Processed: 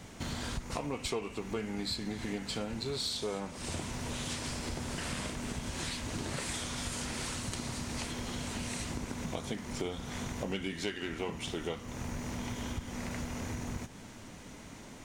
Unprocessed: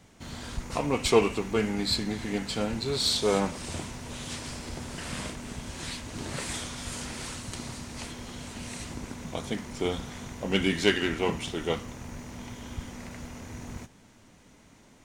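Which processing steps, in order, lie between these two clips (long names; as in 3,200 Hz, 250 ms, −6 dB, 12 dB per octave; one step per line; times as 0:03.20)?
downward compressor 6 to 1, threshold −42 dBFS, peak gain reduction 24.5 dB
level +7.5 dB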